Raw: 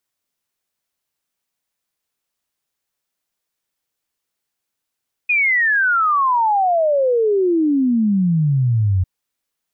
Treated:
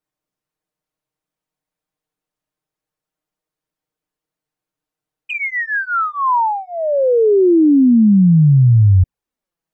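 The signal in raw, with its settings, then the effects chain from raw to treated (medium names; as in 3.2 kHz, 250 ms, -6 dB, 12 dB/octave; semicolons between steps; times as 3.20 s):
log sweep 2.5 kHz -> 89 Hz 3.75 s -13 dBFS
tilt shelf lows +7 dB, about 1.4 kHz; touch-sensitive flanger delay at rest 6.5 ms, full sweep at -7.5 dBFS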